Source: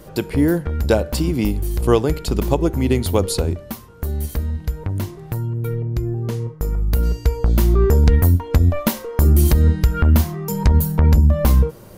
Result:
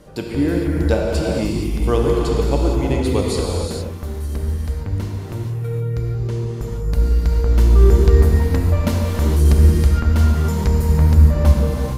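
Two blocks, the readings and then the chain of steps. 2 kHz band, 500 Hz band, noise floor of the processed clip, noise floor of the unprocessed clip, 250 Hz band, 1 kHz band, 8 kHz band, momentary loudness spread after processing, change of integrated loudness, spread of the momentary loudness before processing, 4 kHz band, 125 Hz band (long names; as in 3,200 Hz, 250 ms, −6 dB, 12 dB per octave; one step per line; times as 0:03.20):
0.0 dB, +0.5 dB, −28 dBFS, −40 dBFS, −0.5 dB, −0.5 dB, −2.5 dB, 12 LU, +1.0 dB, 11 LU, −0.5 dB, +1.0 dB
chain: low-pass filter 8,900 Hz 12 dB per octave
reverb whose tail is shaped and stops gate 490 ms flat, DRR −2.5 dB
level −4.5 dB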